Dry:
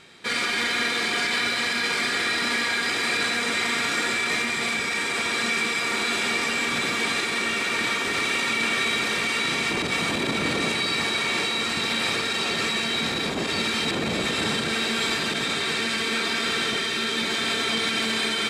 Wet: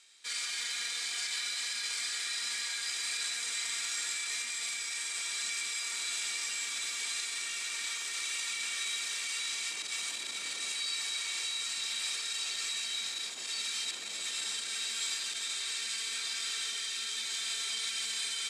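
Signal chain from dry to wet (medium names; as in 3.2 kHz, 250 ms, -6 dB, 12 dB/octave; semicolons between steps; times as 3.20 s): band-pass filter 7.5 kHz, Q 1.5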